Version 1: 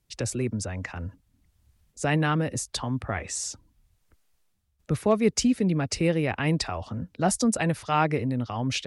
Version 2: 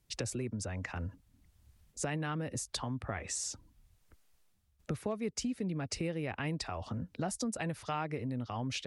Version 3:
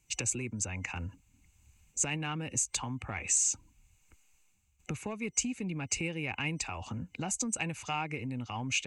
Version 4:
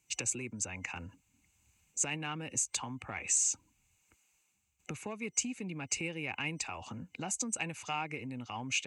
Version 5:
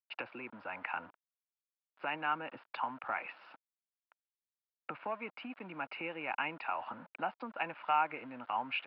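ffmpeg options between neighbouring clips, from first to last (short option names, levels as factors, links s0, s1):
-af "acompressor=threshold=0.0178:ratio=4"
-af "asoftclip=type=tanh:threshold=0.0708,superequalizer=7b=0.708:8b=0.562:9b=1.41:12b=3.55:15b=3.98"
-af "highpass=f=200:p=1,volume=0.841"
-af "aresample=11025,aeval=exprs='val(0)*gte(abs(val(0)),0.00251)':c=same,aresample=44100,highpass=400,equalizer=f=410:t=q:w=4:g=-7,equalizer=f=650:t=q:w=4:g=4,equalizer=f=940:t=q:w=4:g=6,equalizer=f=1400:t=q:w=4:g=8,equalizer=f=2100:t=q:w=4:g=-5,lowpass=f=2400:w=0.5412,lowpass=f=2400:w=1.3066,volume=1.41"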